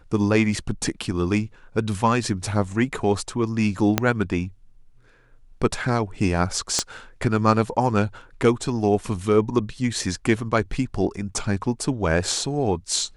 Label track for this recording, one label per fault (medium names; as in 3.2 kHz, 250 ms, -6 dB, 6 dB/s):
3.980000	3.980000	pop -3 dBFS
6.790000	6.790000	pop -6 dBFS